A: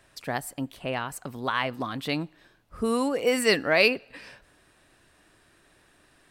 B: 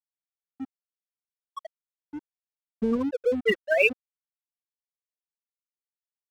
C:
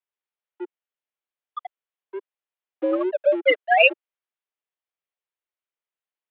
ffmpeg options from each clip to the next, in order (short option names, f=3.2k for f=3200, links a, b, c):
-af "afftfilt=real='re*gte(hypot(re,im),0.398)':imag='im*gte(hypot(re,im),0.398)':win_size=1024:overlap=0.75,asubboost=boost=12:cutoff=110,aeval=exprs='sgn(val(0))*max(abs(val(0))-0.00531,0)':c=same,volume=4.5dB"
-af "highpass=f=260:t=q:w=0.5412,highpass=f=260:t=q:w=1.307,lowpass=f=3.3k:t=q:w=0.5176,lowpass=f=3.3k:t=q:w=0.7071,lowpass=f=3.3k:t=q:w=1.932,afreqshift=91,volume=5.5dB"